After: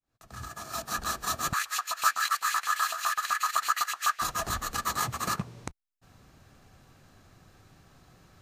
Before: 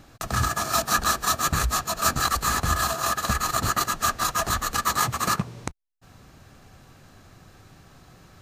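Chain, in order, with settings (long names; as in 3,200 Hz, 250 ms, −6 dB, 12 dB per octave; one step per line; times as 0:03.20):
fade in at the beginning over 1.45 s
0:01.53–0:04.22: auto-filter high-pass saw up 7.9 Hz 960–2,700 Hz
level −6.5 dB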